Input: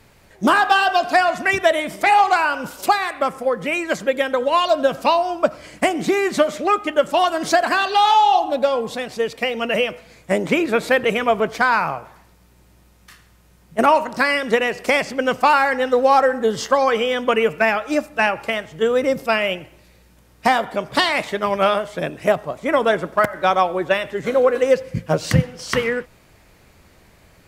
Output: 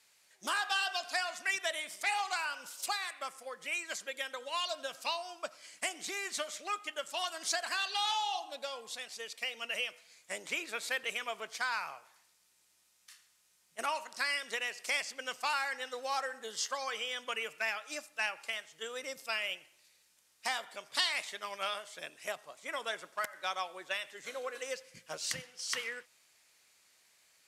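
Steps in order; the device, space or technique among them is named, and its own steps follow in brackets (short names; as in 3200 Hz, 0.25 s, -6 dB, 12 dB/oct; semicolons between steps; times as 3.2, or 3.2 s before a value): piezo pickup straight into a mixer (LPF 8500 Hz 12 dB/oct; differentiator); gain -3 dB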